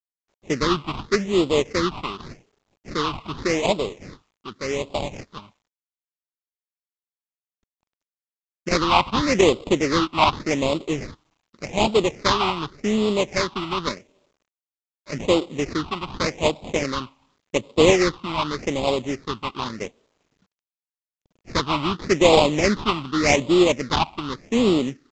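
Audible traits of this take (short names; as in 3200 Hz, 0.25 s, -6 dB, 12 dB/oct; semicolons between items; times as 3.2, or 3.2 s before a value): aliases and images of a low sample rate 1600 Hz, jitter 20%; phasing stages 6, 0.86 Hz, lowest notch 460–1700 Hz; a quantiser's noise floor 12-bit, dither none; µ-law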